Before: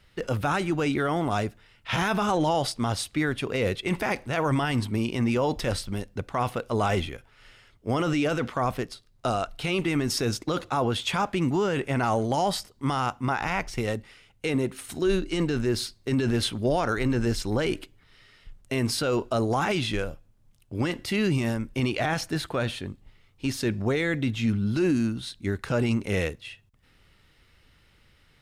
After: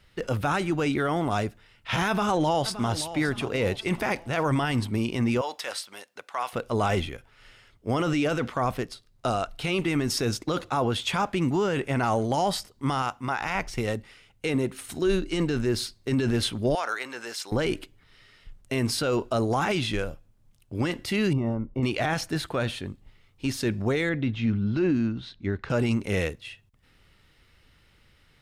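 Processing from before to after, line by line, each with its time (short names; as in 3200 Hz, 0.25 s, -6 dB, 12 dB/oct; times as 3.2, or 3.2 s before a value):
2.08–2.91 echo throw 0.57 s, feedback 40%, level -13 dB
5.41–6.53 HPF 820 Hz
13.02–13.55 low shelf 480 Hz -6 dB
16.75–17.52 HPF 780 Hz
21.33–21.83 polynomial smoothing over 65 samples
24.09–25.7 air absorption 190 m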